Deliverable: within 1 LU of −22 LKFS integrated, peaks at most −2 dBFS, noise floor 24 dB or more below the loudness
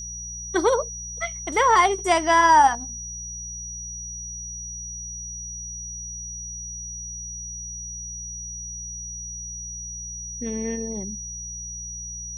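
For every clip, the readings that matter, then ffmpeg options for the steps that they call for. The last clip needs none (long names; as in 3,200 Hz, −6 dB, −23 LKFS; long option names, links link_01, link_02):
mains hum 60 Hz; hum harmonics up to 180 Hz; level of the hum −39 dBFS; interfering tone 5,800 Hz; level of the tone −33 dBFS; integrated loudness −25.5 LKFS; sample peak −6.5 dBFS; target loudness −22.0 LKFS
→ -af "bandreject=frequency=60:width_type=h:width=4,bandreject=frequency=120:width_type=h:width=4,bandreject=frequency=180:width_type=h:width=4"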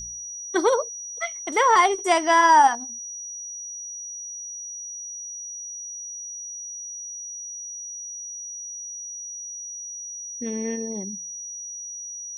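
mains hum none found; interfering tone 5,800 Hz; level of the tone −33 dBFS
→ -af "bandreject=frequency=5800:width=30"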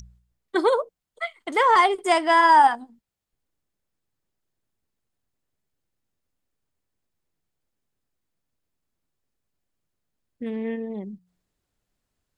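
interfering tone none found; integrated loudness −20.0 LKFS; sample peak −6.5 dBFS; target loudness −22.0 LKFS
→ -af "volume=-2dB"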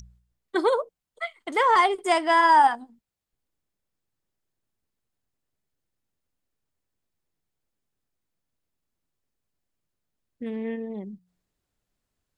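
integrated loudness −22.0 LKFS; sample peak −9.0 dBFS; background noise floor −84 dBFS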